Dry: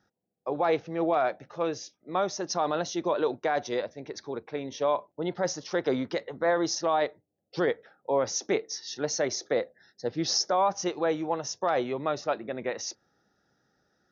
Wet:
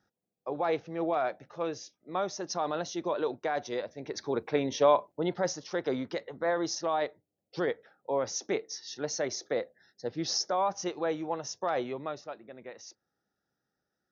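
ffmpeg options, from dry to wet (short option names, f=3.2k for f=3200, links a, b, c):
-af "volume=6dB,afade=t=in:st=3.85:d=0.67:silence=0.316228,afade=t=out:st=4.52:d=1.1:silence=0.316228,afade=t=out:st=11.86:d=0.45:silence=0.354813"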